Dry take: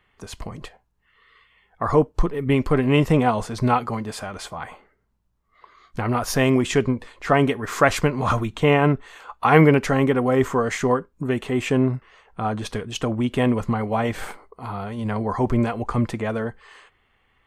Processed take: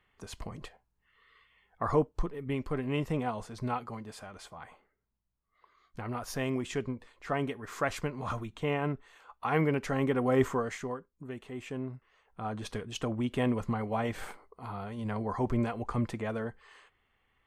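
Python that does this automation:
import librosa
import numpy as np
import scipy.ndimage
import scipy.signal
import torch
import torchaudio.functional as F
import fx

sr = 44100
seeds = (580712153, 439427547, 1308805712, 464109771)

y = fx.gain(x, sr, db=fx.line((1.83, -7.5), (2.44, -14.0), (9.65, -14.0), (10.42, -6.0), (10.95, -18.0), (11.93, -18.0), (12.69, -9.0)))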